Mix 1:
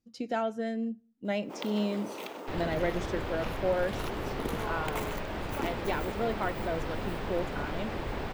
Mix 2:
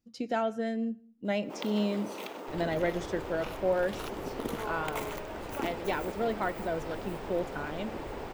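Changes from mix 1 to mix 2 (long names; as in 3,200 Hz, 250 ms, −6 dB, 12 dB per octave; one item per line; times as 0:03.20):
speech: send +10.0 dB
second sound −8.0 dB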